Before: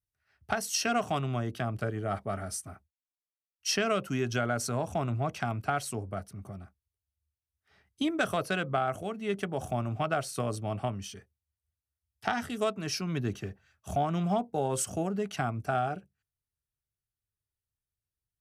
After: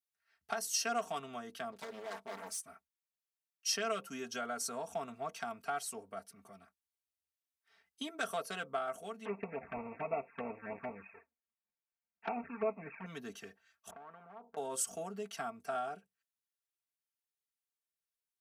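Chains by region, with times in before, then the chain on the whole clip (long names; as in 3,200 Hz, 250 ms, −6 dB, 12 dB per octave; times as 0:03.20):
0:01.72–0:02.61: comb filter 4.7 ms, depth 58% + hard clipping −32.5 dBFS + highs frequency-modulated by the lows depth 0.86 ms
0:09.25–0:13.06: each half-wave held at its own peak + linear-phase brick-wall low-pass 2,700 Hz + flanger swept by the level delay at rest 5.8 ms, full sweep at −24.5 dBFS
0:13.90–0:14.57: low-pass filter 1,200 Hz 24 dB per octave + downward compressor 4 to 1, threshold −37 dBFS + every bin compressed towards the loudest bin 2 to 1
whole clip: dynamic equaliser 2,400 Hz, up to −6 dB, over −47 dBFS, Q 0.91; high-pass filter 990 Hz 6 dB per octave; comb filter 4.4 ms, depth 72%; level −4 dB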